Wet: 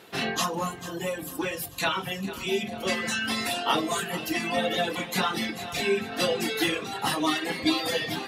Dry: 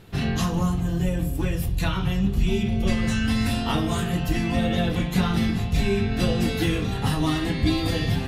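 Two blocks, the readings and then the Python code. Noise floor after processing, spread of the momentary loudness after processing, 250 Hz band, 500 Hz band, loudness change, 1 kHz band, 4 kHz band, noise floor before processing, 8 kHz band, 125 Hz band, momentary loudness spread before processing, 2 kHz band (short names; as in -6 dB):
-39 dBFS, 6 LU, -7.5 dB, +0.5 dB, -3.5 dB, +2.5 dB, +2.5 dB, -28 dBFS, +3.5 dB, -16.5 dB, 2 LU, +2.5 dB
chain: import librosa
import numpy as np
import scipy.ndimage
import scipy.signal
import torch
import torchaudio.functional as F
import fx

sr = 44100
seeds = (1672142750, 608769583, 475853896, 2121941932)

p1 = fx.dereverb_blind(x, sr, rt60_s=1.9)
p2 = scipy.signal.sosfilt(scipy.signal.butter(2, 400.0, 'highpass', fs=sr, output='sos'), p1)
p3 = p2 + fx.echo_feedback(p2, sr, ms=445, feedback_pct=52, wet_db=-14.5, dry=0)
y = p3 * 10.0 ** (4.5 / 20.0)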